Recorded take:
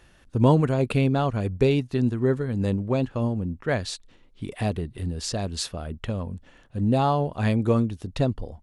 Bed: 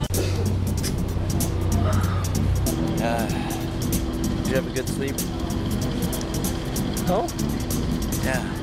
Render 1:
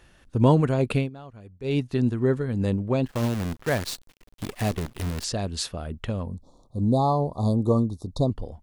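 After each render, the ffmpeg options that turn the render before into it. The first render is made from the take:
-filter_complex "[0:a]asettb=1/sr,asplit=3[a][b][c];[a]atrim=end=3.064[d];[b]atrim=start=3.06:end=5.24,asetpts=PTS-STARTPTS,afade=t=in:d=0.004:c=qsin,afade=t=out:st=2.176:d=0.004:c=qsin,acrusher=bits=6:dc=4:mix=0:aa=0.000001[e];[c]atrim=start=5.236[f];[d][e]acrossfade=d=0.004:c1=hsin:c2=qsin[g];[g][f]acrossfade=d=0.004:c1=qsin:c2=hsin,asettb=1/sr,asplit=3[h][i][j];[h]atrim=end=6.264[k];[i]atrim=start=6.26:end=8.3,asetpts=PTS-STARTPTS,afade=t=in:d=0.004:c=qsin,afade=t=out:st=2.036:d=0.004:c=qsin,asuperstop=centerf=2100:order=20:qfactor=0.86[l];[j]atrim=start=8.296[m];[k][l]acrossfade=d=0.004:c1=hsin:c2=qsin[n];[n][m]acrossfade=d=0.004:c1=qsin:c2=hsin,asplit=3[o][p][q];[o]atrim=end=1.1,asetpts=PTS-STARTPTS,afade=t=out:st=0.96:d=0.14:silence=0.112202[r];[p]atrim=start=1.1:end=1.63,asetpts=PTS-STARTPTS,volume=-19dB[s];[q]atrim=start=1.63,asetpts=PTS-STARTPTS,afade=t=in:d=0.14:silence=0.112202[t];[r][s][t]concat=n=3:v=0:a=1"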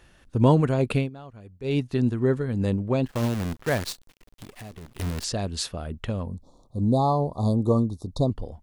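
-filter_complex "[0:a]asettb=1/sr,asplit=3[a][b][c];[a]atrim=end=3.924[d];[b]atrim=start=3.92:end=4.99,asetpts=PTS-STARTPTS,afade=t=in:d=0.004:c=qsin,afade=t=out:st=1.066:d=0.004:c=qsin,acompressor=threshold=-40dB:ratio=4:attack=3.2:release=140:knee=1:detection=peak[e];[c]atrim=start=4.986[f];[d][e]acrossfade=d=0.004:c1=hsin:c2=qsin[g];[g][f]acrossfade=d=0.004:c1=qsin:c2=hsin"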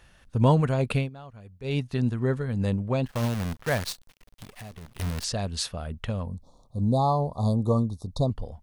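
-af "equalizer=f=330:w=1.9:g=-8,bandreject=f=7.3k:w=22"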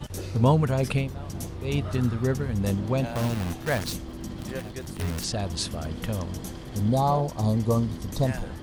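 -filter_complex "[1:a]volume=-11.5dB[a];[0:a][a]amix=inputs=2:normalize=0"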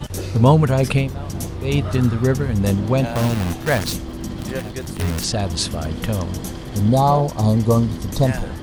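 -af "volume=7.5dB,alimiter=limit=-2dB:level=0:latency=1"

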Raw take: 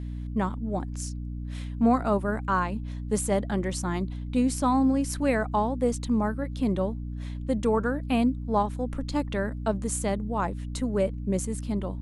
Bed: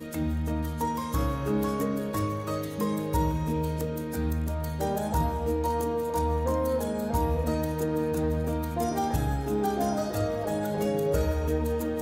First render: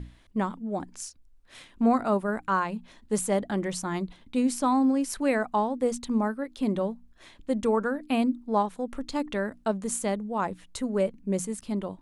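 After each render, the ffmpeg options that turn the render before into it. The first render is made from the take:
-af "bandreject=f=60:t=h:w=6,bandreject=f=120:t=h:w=6,bandreject=f=180:t=h:w=6,bandreject=f=240:t=h:w=6,bandreject=f=300:t=h:w=6"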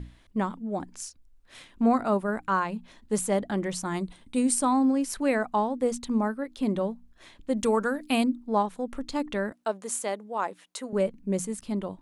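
-filter_complex "[0:a]asettb=1/sr,asplit=3[a][b][c];[a]atrim=end=3.854[d];[b]atrim=start=3.85:end=4.65,asetpts=PTS-STARTPTS,afade=t=in:d=0.004:c=qsin,afade=t=out:st=0.796:d=0.004:c=qsin,equalizer=f=8.8k:t=o:w=0.36:g=14[e];[c]atrim=start=4.646[f];[d][e]acrossfade=d=0.004:c1=hsin:c2=qsin[g];[g][f]acrossfade=d=0.004:c1=qsin:c2=hsin,asettb=1/sr,asplit=3[h][i][j];[h]atrim=end=7.574[k];[i]atrim=start=7.57:end=8.24,asetpts=PTS-STARTPTS,afade=t=in:d=0.004:c=qsin,afade=t=out:st=0.666:d=0.004:c=qsin,highshelf=f=3k:g=11[l];[j]atrim=start=8.236[m];[k][l]acrossfade=d=0.004:c1=hsin:c2=qsin[n];[n][m]acrossfade=d=0.004:c1=qsin:c2=hsin,asettb=1/sr,asplit=3[o][p][q];[o]atrim=end=9.524[r];[p]atrim=start=9.52:end=10.93,asetpts=PTS-STARTPTS,afade=t=in:d=0.004:c=qsin,afade=t=out:st=1.406:d=0.004:c=qsin,highpass=400[s];[q]atrim=start=10.926[t];[r][s]acrossfade=d=0.004:c1=hsin:c2=qsin[u];[u][t]acrossfade=d=0.004:c1=qsin:c2=hsin"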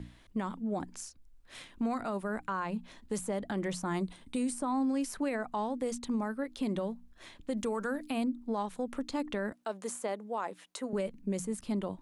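-filter_complex "[0:a]acrossover=split=110|1700[a][b][c];[a]acompressor=threshold=-50dB:ratio=4[d];[b]acompressor=threshold=-29dB:ratio=4[e];[c]acompressor=threshold=-42dB:ratio=4[f];[d][e][f]amix=inputs=3:normalize=0,alimiter=level_in=0.5dB:limit=-24dB:level=0:latency=1:release=33,volume=-0.5dB"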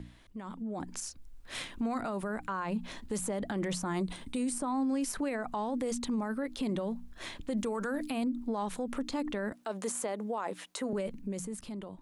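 -af "alimiter=level_in=10.5dB:limit=-24dB:level=0:latency=1:release=73,volume=-10.5dB,dynaudnorm=f=100:g=17:m=9dB"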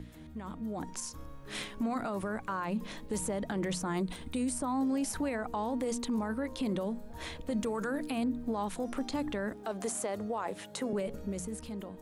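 -filter_complex "[1:a]volume=-21.5dB[a];[0:a][a]amix=inputs=2:normalize=0"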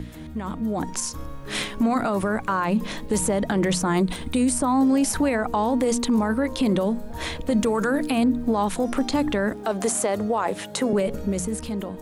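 -af "volume=11.5dB"

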